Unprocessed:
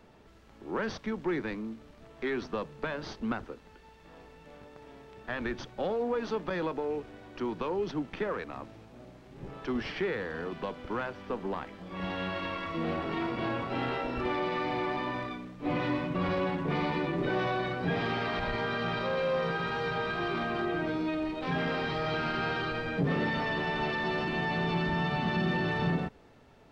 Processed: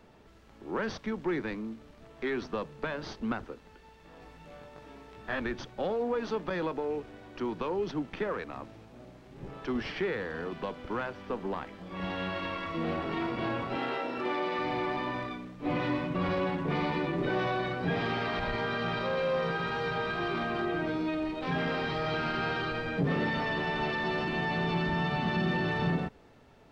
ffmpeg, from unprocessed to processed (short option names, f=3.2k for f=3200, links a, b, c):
-filter_complex "[0:a]asettb=1/sr,asplit=3[a][b][c];[a]atrim=end=4.204[d];[b]atrim=start=4.2:end=5.4,asetpts=PTS-STARTPTS,afade=t=in:d=0.004:c=qsin,afade=t=out:st=1.196:d=0.004:c=qsin,asplit=2[e][f];[f]adelay=19,volume=-2dB[g];[e][g]amix=inputs=2:normalize=0,atrim=end_sample=52920[h];[c]atrim=start=5.396[i];[d][h]acrossfade=d=0.004:c1=hsin:c2=qsin[j];[j][i]acrossfade=d=0.004:c1=qsin:c2=hsin,asettb=1/sr,asplit=3[k][l][m];[k]atrim=end=13.764[n];[l]atrim=start=13.76:end=14.59,asetpts=PTS-STARTPTS,afade=t=in:d=0.004:c=qsin,afade=t=out:st=0.826:d=0.004:c=qsin,highpass=230[o];[m]atrim=start=14.586[p];[n][o]acrossfade=d=0.004:c1=hsin:c2=qsin[q];[q][p]acrossfade=d=0.004:c1=qsin:c2=hsin"